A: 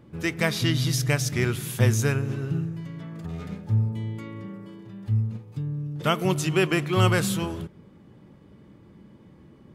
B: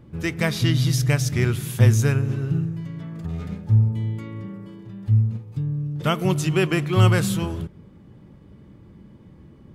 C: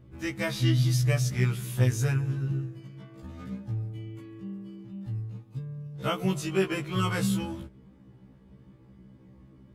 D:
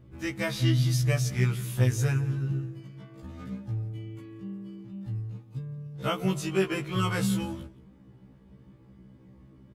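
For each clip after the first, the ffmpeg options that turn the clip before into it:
ffmpeg -i in.wav -af "lowshelf=frequency=120:gain=11" out.wav
ffmpeg -i in.wav -af "afftfilt=real='re*1.73*eq(mod(b,3),0)':imag='im*1.73*eq(mod(b,3),0)':win_size=2048:overlap=0.75,volume=-4dB" out.wav
ffmpeg -i in.wav -af "aecho=1:1:173:0.0944" out.wav

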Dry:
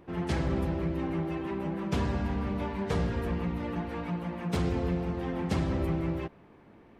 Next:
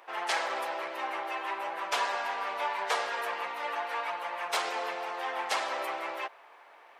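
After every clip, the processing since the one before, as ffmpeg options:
ffmpeg -i in.wav -af "highpass=frequency=690:width=0.5412,highpass=frequency=690:width=1.3066,volume=9dB" out.wav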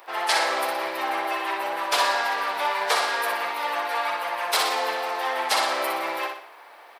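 ffmpeg -i in.wav -af "aexciter=amount=1.2:drive=7.9:freq=3800,aecho=1:1:61|122|183|244|305:0.562|0.242|0.104|0.0447|0.0192,volume=6dB" out.wav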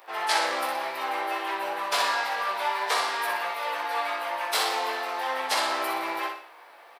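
ffmpeg -i in.wav -filter_complex "[0:a]asplit=2[link_01][link_02];[link_02]adelay=45,volume=-13.5dB[link_03];[link_01][link_03]amix=inputs=2:normalize=0,flanger=delay=18:depth=2.5:speed=0.33" out.wav

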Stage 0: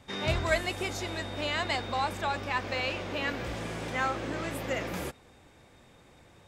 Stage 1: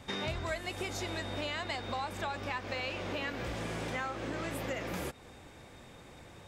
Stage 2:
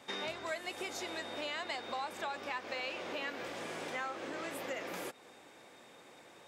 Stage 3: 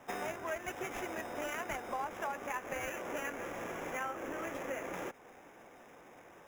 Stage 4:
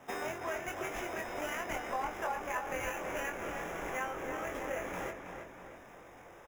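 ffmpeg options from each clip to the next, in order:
ffmpeg -i in.wav -af "acompressor=threshold=-39dB:ratio=5,volume=4.5dB" out.wav
ffmpeg -i in.wav -af "highpass=310,volume=-2dB" out.wav
ffmpeg -i in.wav -filter_complex "[0:a]tremolo=f=240:d=0.4,acrossover=split=110|2000[link_01][link_02][link_03];[link_03]acrusher=samples=10:mix=1:aa=0.000001[link_04];[link_01][link_02][link_04]amix=inputs=3:normalize=0,volume=3dB" out.wav
ffmpeg -i in.wav -filter_complex "[0:a]asplit=2[link_01][link_02];[link_02]adelay=23,volume=-4.5dB[link_03];[link_01][link_03]amix=inputs=2:normalize=0,asplit=2[link_04][link_05];[link_05]adelay=322,lowpass=frequency=3900:poles=1,volume=-6.5dB,asplit=2[link_06][link_07];[link_07]adelay=322,lowpass=frequency=3900:poles=1,volume=0.51,asplit=2[link_08][link_09];[link_09]adelay=322,lowpass=frequency=3900:poles=1,volume=0.51,asplit=2[link_10][link_11];[link_11]adelay=322,lowpass=frequency=3900:poles=1,volume=0.51,asplit=2[link_12][link_13];[link_13]adelay=322,lowpass=frequency=3900:poles=1,volume=0.51,asplit=2[link_14][link_15];[link_15]adelay=322,lowpass=frequency=3900:poles=1,volume=0.51[link_16];[link_04][link_06][link_08][link_10][link_12][link_14][link_16]amix=inputs=7:normalize=0,asubboost=boost=2.5:cutoff=110" out.wav

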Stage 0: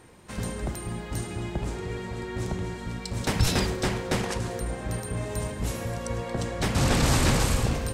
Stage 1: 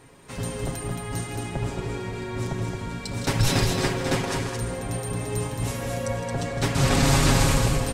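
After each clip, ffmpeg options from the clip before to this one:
ffmpeg -i in.wav -filter_complex "[0:a]aecho=1:1:7.3:0.65,asplit=2[link_01][link_02];[link_02]aecho=0:1:160.3|221.6:0.282|0.562[link_03];[link_01][link_03]amix=inputs=2:normalize=0" out.wav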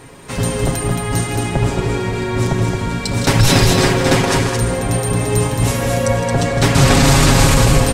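ffmpeg -i in.wav -af "alimiter=level_in=13dB:limit=-1dB:release=50:level=0:latency=1,volume=-1dB" out.wav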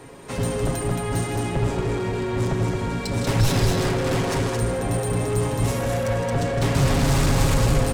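ffmpeg -i in.wav -filter_complex "[0:a]equalizer=frequency=470:width=0.57:gain=5.5,acrossover=split=150[link_01][link_02];[link_02]asoftclip=type=tanh:threshold=-15.5dB[link_03];[link_01][link_03]amix=inputs=2:normalize=0,volume=-6.5dB" out.wav

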